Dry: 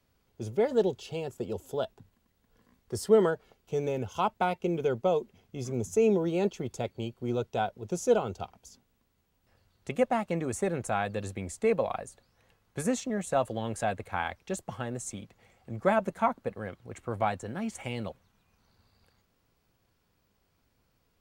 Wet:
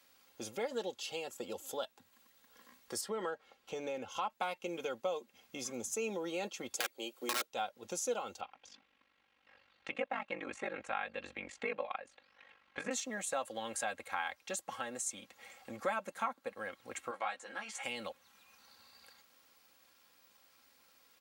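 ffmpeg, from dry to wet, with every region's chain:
-filter_complex "[0:a]asettb=1/sr,asplit=3[a][b][c];[a]atrim=end=3.014[d];[b]atrim=start=3.01:end=4.3,asetpts=PTS-STARTPTS,afade=t=in:d=0.004:c=qsin,afade=t=out:st=1.286:d=0.004:c=qsin,lowpass=f=3k:p=1,acompressor=threshold=-24dB:ratio=2:attack=3.2:release=140:knee=1:detection=peak[e];[c]atrim=start=4.296[f];[d][e]acrossfade=d=0.004:c1=hsin:c2=qsin[g];[g][f]acrossfade=d=0.004:c1=qsin:c2=hsin,asettb=1/sr,asplit=3[h][i][j];[h]atrim=end=6.754[k];[i]atrim=start=6.75:end=7.48,asetpts=PTS-STARTPTS,afade=t=in:d=0.004:c=qsin,afade=t=out:st=0.726:d=0.004:c=qsin,highpass=f=350:t=q:w=1.8,highshelf=f=6.5k:g=8.5,aeval=exprs='(mod(12.6*val(0)+1,2)-1)/12.6':c=same[l];[j]atrim=start=7.476[m];[k][l]acrossfade=d=0.004:c1=hsin:c2=qsin[n];[n][m]acrossfade=d=0.004:c1=qsin:c2=hsin,asettb=1/sr,asplit=3[o][p][q];[o]atrim=end=8.404[r];[p]atrim=start=8.4:end=12.91,asetpts=PTS-STARTPTS,afade=t=in:d=0.004:c=qsin,afade=t=out:st=4.506:d=0.004:c=qsin,aeval=exprs='val(0)*sin(2*PI*24*n/s)':c=same,lowpass=f=2.6k:t=q:w=1.5[s];[q]atrim=start=12.906[t];[r][s]acrossfade=d=0.004:c1=hsin:c2=qsin[u];[u][t]acrossfade=d=0.004:c1=qsin:c2=hsin,asettb=1/sr,asplit=3[v][w][x];[v]atrim=end=17.114[y];[w]atrim=start=17.11:end=17.83,asetpts=PTS-STARTPTS,afade=t=in:d=0.004:c=qsin,afade=t=out:st=0.716:d=0.004:c=qsin,highpass=f=930:p=1,aemphasis=mode=reproduction:type=50fm,asplit=2[z][aa];[aa]adelay=15,volume=-3.5dB[ab];[z][ab]amix=inputs=2:normalize=0,atrim=end_sample=31752[ac];[x]atrim=start=17.826[ad];[y][ac]acrossfade=d=0.004:c1=hsin:c2=qsin[ae];[ae][ad]acrossfade=d=0.004:c1=qsin:c2=hsin,highpass=f=1.5k:p=1,aecho=1:1:3.7:0.56,acompressor=threshold=-55dB:ratio=2,volume=10.5dB"

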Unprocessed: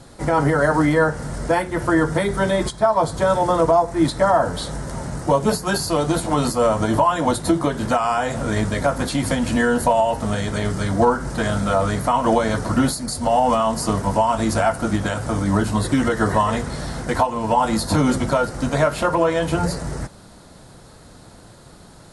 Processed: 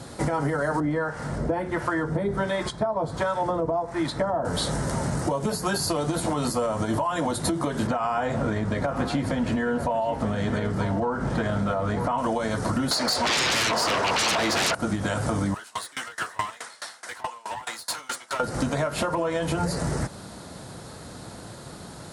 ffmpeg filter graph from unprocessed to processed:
-filter_complex "[0:a]asettb=1/sr,asplit=3[a][b][c];[a]atrim=end=0.804[d];[b]atrim=start=0.8:end=4.45,asetpts=PTS-STARTPTS,afade=t=in:d=0.004:c=qsin,afade=t=out:st=3.646:d=0.004:c=qsin,lowpass=f=2.7k:p=1,acrossover=split=760[e][f];[e]aeval=exprs='val(0)*(1-0.7/2+0.7/2*cos(2*PI*1.4*n/s))':c=same[g];[f]aeval=exprs='val(0)*(1-0.7/2-0.7/2*cos(2*PI*1.4*n/s))':c=same[h];[g][h]amix=inputs=2:normalize=0[i];[c]atrim=start=4.446[j];[d][i]acrossfade=d=0.004:c1=hsin:c2=qsin[k];[k][j]acrossfade=d=0.004:c1=qsin:c2=hsin,asettb=1/sr,asplit=3[l][m][n];[l]atrim=end=7.874[o];[m]atrim=start=7.87:end=12.18,asetpts=PTS-STARTPTS,afade=t=in:d=0.004:c=qsin,afade=t=out:st=4.306:d=0.004:c=qsin,aemphasis=mode=reproduction:type=75fm,aecho=1:1:938:0.2,atrim=end_sample=190071[p];[n]atrim=start=12.176[q];[o][p]acrossfade=d=0.004:c1=hsin:c2=qsin[r];[r][q]acrossfade=d=0.004:c1=qsin:c2=hsin,asettb=1/sr,asplit=3[s][t][u];[s]atrim=end=12.914[v];[t]atrim=start=12.91:end=14.75,asetpts=PTS-STARTPTS,afade=t=in:d=0.004:c=qsin,afade=t=out:st=1.836:d=0.004:c=qsin,acrossover=split=440 5400:gain=0.0794 1 0.0708[w][x][y];[w][x][y]amix=inputs=3:normalize=0,aeval=exprs='0.473*sin(PI/2*10*val(0)/0.473)':c=same[z];[u]atrim=start=14.746[aa];[v][z]acrossfade=d=0.004:c1=hsin:c2=qsin[ab];[ab][aa]acrossfade=d=0.004:c1=qsin:c2=hsin,asettb=1/sr,asplit=3[ac][ad][ae];[ac]atrim=end=15.544[af];[ad]atrim=start=15.54:end=18.4,asetpts=PTS-STARTPTS,afade=t=in:d=0.004:c=qsin,afade=t=out:st=2.856:d=0.004:c=qsin,highpass=1.2k,aeval=exprs='clip(val(0),-1,0.0355)':c=same,aeval=exprs='val(0)*pow(10,-25*if(lt(mod(4.7*n/s,1),2*abs(4.7)/1000),1-mod(4.7*n/s,1)/(2*abs(4.7)/1000),(mod(4.7*n/s,1)-2*abs(4.7)/1000)/(1-2*abs(4.7)/1000))/20)':c=same[ag];[ae]atrim=start=18.396[ah];[af][ag]acrossfade=d=0.004:c1=hsin:c2=qsin[ai];[ai][ah]acrossfade=d=0.004:c1=qsin:c2=hsin,highpass=71,alimiter=limit=-13.5dB:level=0:latency=1:release=154,acompressor=threshold=-27dB:ratio=6,volume=4.5dB"

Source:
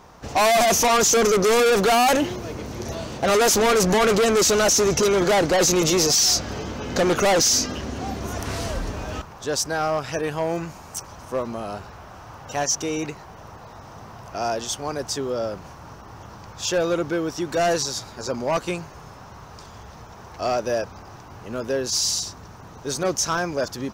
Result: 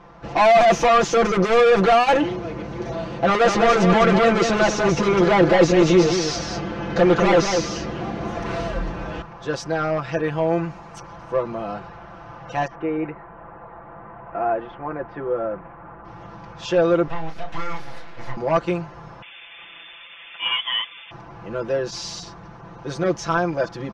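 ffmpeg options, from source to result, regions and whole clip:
-filter_complex "[0:a]asettb=1/sr,asplit=3[a][b][c];[a]atrim=end=3.244[d];[b]atrim=start=3.24:end=8.62,asetpts=PTS-STARTPTS,afade=t=in:d=0.004:c=qsin,afade=t=out:st=5.376:d=0.004:c=qsin,acrossover=split=9600[e][f];[f]acompressor=threshold=-43dB:ratio=4:attack=1:release=60[g];[e][g]amix=inputs=2:normalize=0,aecho=1:1:200:0.531,atrim=end_sample=237258[h];[c]atrim=start=8.616[i];[d][h]acrossfade=d=0.004:c1=hsin:c2=qsin[j];[j][i]acrossfade=d=0.004:c1=qsin:c2=hsin,asettb=1/sr,asplit=3[k][l][m];[k]atrim=end=12.674[n];[l]atrim=start=12.67:end=16.05,asetpts=PTS-STARTPTS,afade=t=in:d=0.004:c=qsin,afade=t=out:st=3.376:d=0.004:c=qsin,lowpass=f=2.1k:w=0.5412,lowpass=f=2.1k:w=1.3066,equalizer=f=130:w=0.94:g=-6[o];[m]atrim=start=16.046[p];[n][o]acrossfade=d=0.004:c1=hsin:c2=qsin[q];[q][p]acrossfade=d=0.004:c1=qsin:c2=hsin,asettb=1/sr,asplit=3[r][s][t];[r]atrim=end=17.074[u];[s]atrim=start=17.07:end=18.37,asetpts=PTS-STARTPTS,afade=t=in:d=0.004:c=qsin,afade=t=out:st=1.296:d=0.004:c=qsin,acrossover=split=320|4100[v][w][x];[v]acompressor=threshold=-41dB:ratio=4[y];[w]acompressor=threshold=-30dB:ratio=4[z];[x]acompressor=threshold=-41dB:ratio=4[aa];[y][z][aa]amix=inputs=3:normalize=0,aeval=exprs='abs(val(0))':c=same,asplit=2[ab][ac];[ac]adelay=31,volume=-6dB[ad];[ab][ad]amix=inputs=2:normalize=0,atrim=end_sample=57330[ae];[t]atrim=start=18.366[af];[u][ae]acrossfade=d=0.004:c1=hsin:c2=qsin[ag];[ag][af]acrossfade=d=0.004:c1=qsin:c2=hsin,asettb=1/sr,asplit=3[ah][ai][aj];[ah]atrim=end=19.224[ak];[ai]atrim=start=19.22:end=21.11,asetpts=PTS-STARTPTS,afade=t=in:d=0.004:c=qsin,afade=t=out:st=1.886:d=0.004:c=qsin,equalizer=f=2.4k:t=o:w=1.2:g=7,lowpass=f=3.1k:t=q:w=0.5098,lowpass=f=3.1k:t=q:w=0.6013,lowpass=f=3.1k:t=q:w=0.9,lowpass=f=3.1k:t=q:w=2.563,afreqshift=-3600[al];[aj]atrim=start=21.106[am];[ak][al]acrossfade=d=0.004:c1=hsin:c2=qsin[an];[an][am]acrossfade=d=0.004:c1=qsin:c2=hsin,lowpass=2.7k,aecho=1:1:5.9:0.88"

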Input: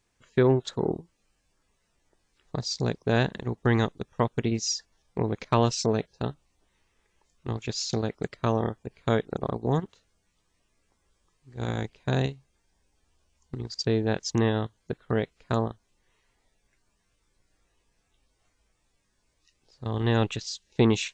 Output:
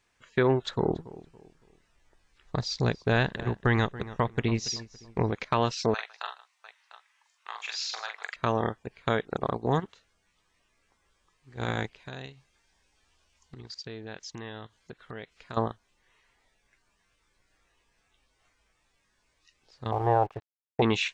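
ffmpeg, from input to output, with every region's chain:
-filter_complex "[0:a]asettb=1/sr,asplit=3[a][b][c];[a]atrim=end=0.614[d];[b]atrim=start=0.61:end=5.31,asetpts=PTS-STARTPTS,afade=t=in:d=0.004:c=qsin,afade=t=out:st=4.696:d=0.004:c=qsin,lowshelf=f=100:g=11.5,asplit=2[e][f];[f]adelay=281,lowpass=f=2.1k:p=1,volume=-18dB,asplit=2[g][h];[h]adelay=281,lowpass=f=2.1k:p=1,volume=0.35,asplit=2[i][j];[j]adelay=281,lowpass=f=2.1k:p=1,volume=0.35[k];[e][g][i][k]amix=inputs=4:normalize=0,atrim=end_sample=207270[l];[c]atrim=start=5.306[m];[d][l]acrossfade=d=0.004:c1=hsin:c2=qsin[n];[n][m]acrossfade=d=0.004:c1=qsin:c2=hsin,asettb=1/sr,asplit=3[o][p][q];[o]atrim=end=5.944[r];[p]atrim=start=5.94:end=8.36,asetpts=PTS-STARTPTS,afade=t=in:d=0.004:c=qsin,afade=t=out:st=2.416:d=0.004:c=qsin,highpass=f=890:w=0.5412,highpass=f=890:w=1.3066,aecho=1:1:44|154|699:0.596|0.119|0.188,atrim=end_sample=106722[s];[q]atrim=start=8.356[t];[r][s]acrossfade=d=0.004:c1=hsin:c2=qsin[u];[u][t]acrossfade=d=0.004:c1=qsin:c2=hsin,asettb=1/sr,asplit=3[v][w][x];[v]atrim=end=11.994[y];[w]atrim=start=11.99:end=15.57,asetpts=PTS-STARTPTS,afade=t=in:d=0.004:c=qsin,afade=t=out:st=3.576:d=0.004:c=qsin,equalizer=f=4.7k:t=o:w=2.3:g=4.5,acompressor=threshold=-41dB:ratio=3:attack=3.2:release=140:knee=1:detection=peak[z];[x]atrim=start=15.566[aa];[y][z]acrossfade=d=0.004:c1=hsin:c2=qsin[ab];[ab][aa]acrossfade=d=0.004:c1=qsin:c2=hsin,asettb=1/sr,asplit=3[ac][ad][ae];[ac]atrim=end=19.924[af];[ad]atrim=start=19.92:end=20.82,asetpts=PTS-STARTPTS,afade=t=in:d=0.004:c=qsin,afade=t=out:st=0.896:d=0.004:c=qsin,lowpass=f=780:t=q:w=3.9,equalizer=f=230:w=2.7:g=-14.5,aeval=exprs='sgn(val(0))*max(abs(val(0))-0.00224,0)':c=same[ag];[ae]atrim=start=20.816[ah];[af][ag]acrossfade=d=0.004:c1=hsin:c2=qsin[ai];[ai][ah]acrossfade=d=0.004:c1=qsin:c2=hsin,acrossover=split=5200[aj][ak];[ak]acompressor=threshold=-47dB:ratio=4:attack=1:release=60[al];[aj][al]amix=inputs=2:normalize=0,equalizer=f=1.8k:w=0.41:g=9,alimiter=limit=-9.5dB:level=0:latency=1:release=228,volume=-3dB"

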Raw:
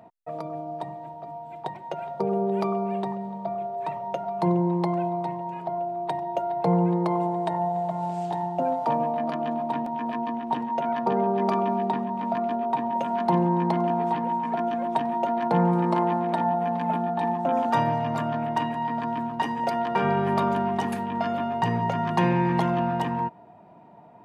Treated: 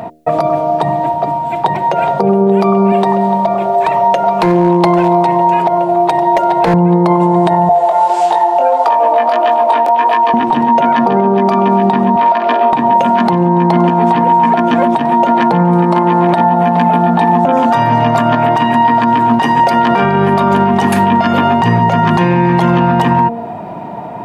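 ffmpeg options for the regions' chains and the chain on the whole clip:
-filter_complex "[0:a]asettb=1/sr,asplit=3[a][b][c];[a]atrim=end=2.924[d];[b]atrim=start=2.92:end=6.74,asetpts=PTS-STARTPTS,afade=t=in:d=0.004:c=qsin,afade=t=out:st=3.816:d=0.004:c=qsin,bass=f=250:g=-9,treble=f=4k:g=2,asoftclip=type=hard:threshold=-21.5dB[e];[c]atrim=start=6.736[f];[d][e]acrossfade=d=0.004:c1=hsin:c2=qsin[g];[g][f]acrossfade=d=0.004:c1=qsin:c2=hsin,asettb=1/sr,asplit=3[h][i][j];[h]atrim=end=7.694[k];[i]atrim=start=7.69:end=10.34,asetpts=PTS-STARTPTS,afade=t=in:d=0.004:c=qsin,afade=t=out:st=2.646:d=0.004:c=qsin,highpass=f=410:w=0.5412,highpass=f=410:w=1.3066,flanger=delay=18:depth=3.6:speed=1.6[l];[j]atrim=start=10.336[m];[k][l]acrossfade=d=0.004:c1=hsin:c2=qsin[n];[n][m]acrossfade=d=0.004:c1=qsin:c2=hsin,asettb=1/sr,asplit=3[o][p][q];[o]atrim=end=12.164[r];[p]atrim=start=12.16:end=12.73,asetpts=PTS-STARTPTS,afade=t=in:d=0.004:c=qsin,afade=t=out:st=0.566:d=0.004:c=qsin,highpass=500,lowpass=5.5k,asplit=2[s][t];[t]adelay=49,volume=-8dB[u];[s][u]amix=inputs=2:normalize=0,atrim=end_sample=25137[v];[q]atrim=start=12.726[w];[r][v]acrossfade=d=0.004:c1=hsin:c2=qsin[x];[x][w]acrossfade=d=0.004:c1=qsin:c2=hsin,bandreject=f=77.52:t=h:w=4,bandreject=f=155.04:t=h:w=4,bandreject=f=232.56:t=h:w=4,bandreject=f=310.08:t=h:w=4,bandreject=f=387.6:t=h:w=4,bandreject=f=465.12:t=h:w=4,bandreject=f=542.64:t=h:w=4,bandreject=f=620.16:t=h:w=4,bandreject=f=697.68:t=h:w=4,acompressor=threshold=-32dB:ratio=6,alimiter=level_in=27dB:limit=-1dB:release=50:level=0:latency=1,volume=-1dB"

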